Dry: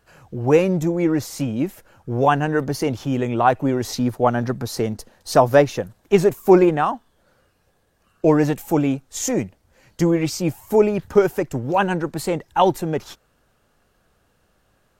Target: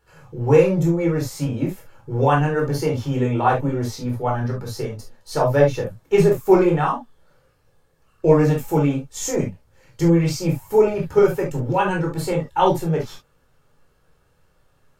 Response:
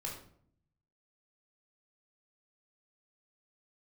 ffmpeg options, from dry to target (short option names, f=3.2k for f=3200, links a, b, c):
-filter_complex "[0:a]asettb=1/sr,asplit=3[a][b][c];[a]atrim=end=3.674[d];[b]atrim=start=3.67:end=5.74,asetpts=PTS-STARTPTS,afade=t=in:d=0.004:c=qsin,afade=t=out:st=2.066:d=0.004:c=qsin,flanger=delay=6.8:depth=3.6:regen=41:speed=1.6:shape=sinusoidal[e];[c]atrim=start=5.736[f];[d][e]acrossfade=d=0.004:c1=hsin:c2=qsin[g];[g][f]acrossfade=d=0.004:c1=qsin:c2=hsin[h];[1:a]atrim=start_sample=2205,atrim=end_sample=3528[i];[h][i]afir=irnorm=-1:irlink=0"